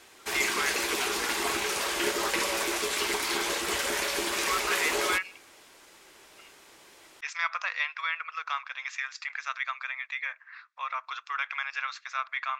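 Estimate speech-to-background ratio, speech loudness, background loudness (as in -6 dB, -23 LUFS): -5.0 dB, -33.0 LUFS, -28.0 LUFS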